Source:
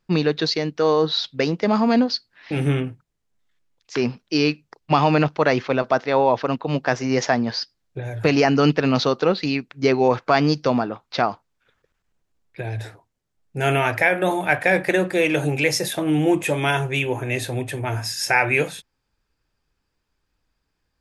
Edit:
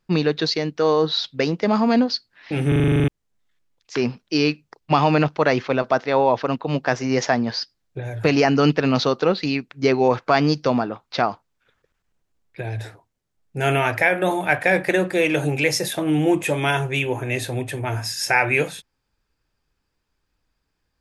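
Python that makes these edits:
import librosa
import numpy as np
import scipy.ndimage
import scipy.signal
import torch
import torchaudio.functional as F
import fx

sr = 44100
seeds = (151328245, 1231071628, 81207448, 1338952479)

y = fx.edit(x, sr, fx.stutter_over(start_s=2.68, slice_s=0.04, count=10), tone=tone)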